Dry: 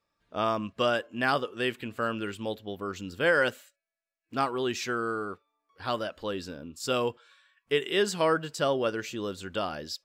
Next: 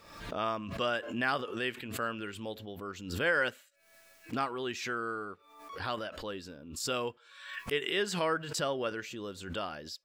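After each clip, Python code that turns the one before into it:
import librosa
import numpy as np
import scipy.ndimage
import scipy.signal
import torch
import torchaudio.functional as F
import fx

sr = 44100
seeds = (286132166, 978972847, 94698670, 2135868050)

y = fx.dynamic_eq(x, sr, hz=2000.0, q=0.81, threshold_db=-40.0, ratio=4.0, max_db=5)
y = fx.pre_swell(y, sr, db_per_s=66.0)
y = y * librosa.db_to_amplitude(-7.5)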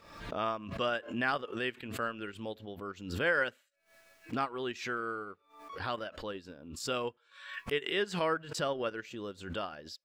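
y = fx.transient(x, sr, attack_db=0, sustain_db=-8)
y = fx.high_shelf(y, sr, hz=5700.0, db=-7.5)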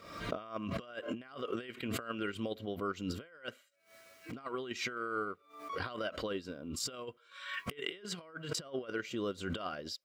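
y = fx.over_compress(x, sr, threshold_db=-39.0, ratio=-0.5)
y = fx.notch_comb(y, sr, f0_hz=870.0)
y = y * librosa.db_to_amplitude(1.0)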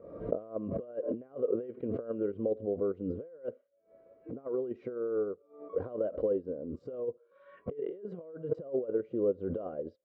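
y = fx.lowpass_res(x, sr, hz=500.0, q=3.8)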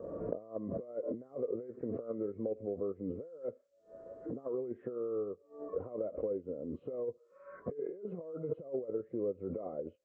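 y = fx.freq_compress(x, sr, knee_hz=1100.0, ratio=1.5)
y = fx.band_squash(y, sr, depth_pct=70)
y = y * librosa.db_to_amplitude(-4.5)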